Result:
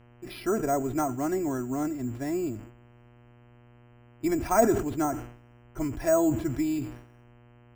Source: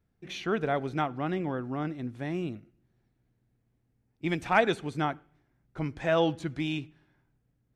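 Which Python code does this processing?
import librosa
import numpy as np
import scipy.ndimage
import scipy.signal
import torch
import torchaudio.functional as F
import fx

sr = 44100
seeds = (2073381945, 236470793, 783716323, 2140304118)

y = fx.low_shelf(x, sr, hz=110.0, db=9.0)
y = y + 0.76 * np.pad(y, (int(3.0 * sr / 1000.0), 0))[:len(y)]
y = fx.env_lowpass_down(y, sr, base_hz=1300.0, full_db=-21.5)
y = fx.lowpass(y, sr, hz=1800.0, slope=6)
y = np.repeat(y[::6], 6)[:len(y)]
y = fx.dmg_buzz(y, sr, base_hz=120.0, harmonics=26, level_db=-56.0, tilt_db=-6, odd_only=False)
y = fx.sustainer(y, sr, db_per_s=91.0)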